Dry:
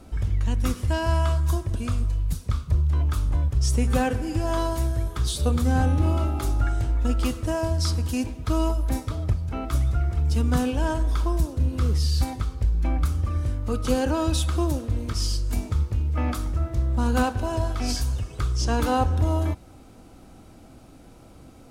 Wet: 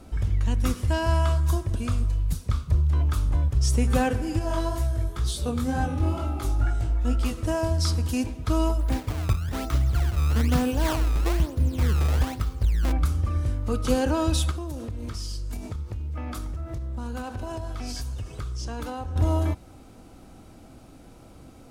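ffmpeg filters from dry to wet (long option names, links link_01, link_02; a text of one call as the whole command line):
ffmpeg -i in.wav -filter_complex "[0:a]asettb=1/sr,asplit=3[link_01][link_02][link_03];[link_01]atrim=end=4.394[link_04];[link_02]atrim=start=4.39:end=7.38,asetpts=PTS-STARTPTS,afade=type=in:duration=0.004:curve=qsin,afade=type=out:start_time=2.986:duration=0.004:curve=qsin,flanger=delay=16.5:depth=5.2:speed=2.1[link_05];[link_03]atrim=start=7.376[link_06];[link_04][link_05]acrossfade=duration=0.004:curve1=hsin:curve2=qsin[link_07];[link_07][link_06]acrossfade=duration=0.004:curve1=qsin:curve2=hsin,asplit=3[link_08][link_09][link_10];[link_08]afade=type=out:start_time=8.78:duration=0.02[link_11];[link_09]acrusher=samples=20:mix=1:aa=0.000001:lfo=1:lforange=32:lforate=1.1,afade=type=in:start_time=8.78:duration=0.02,afade=type=out:start_time=12.91:duration=0.02[link_12];[link_10]afade=type=in:start_time=12.91:duration=0.02[link_13];[link_11][link_12][link_13]amix=inputs=3:normalize=0,asettb=1/sr,asplit=3[link_14][link_15][link_16];[link_14]atrim=end=14.514[link_17];[link_15]atrim=start=14.51:end=19.16,asetpts=PTS-STARTPTS,afade=type=in:duration=0.004:curve=qsin,afade=type=out:start_time=4.646:duration=0.004:curve=qsin,acompressor=threshold=-28dB:ratio=12:attack=3.2:release=140:knee=1:detection=peak[link_18];[link_16]atrim=start=19.156[link_19];[link_17][link_18]acrossfade=duration=0.004:curve1=hsin:curve2=qsin[link_20];[link_20][link_19]acrossfade=duration=0.004:curve1=qsin:curve2=hsin" out.wav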